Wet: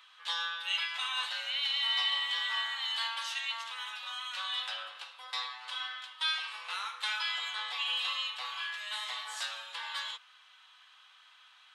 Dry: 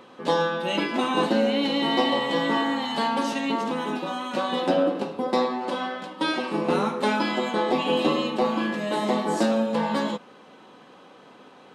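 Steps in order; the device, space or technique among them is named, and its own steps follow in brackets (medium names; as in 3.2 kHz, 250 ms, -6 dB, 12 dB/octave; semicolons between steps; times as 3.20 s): headphones lying on a table (high-pass 1.3 kHz 24 dB/octave; peaking EQ 3.4 kHz +7 dB 0.59 oct); trim -5 dB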